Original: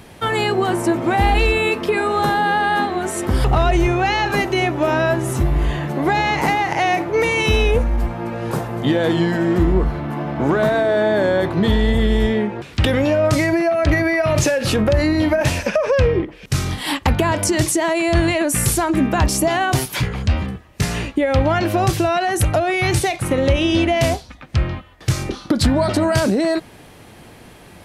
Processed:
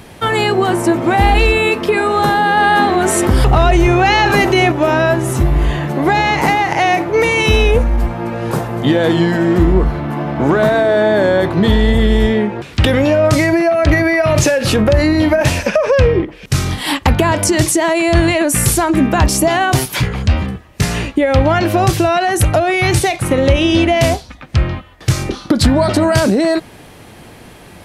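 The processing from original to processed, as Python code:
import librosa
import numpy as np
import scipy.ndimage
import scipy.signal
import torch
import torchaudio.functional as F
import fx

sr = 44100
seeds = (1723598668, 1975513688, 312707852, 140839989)

y = fx.env_flatten(x, sr, amount_pct=50, at=(2.57, 4.72))
y = y * 10.0 ** (4.5 / 20.0)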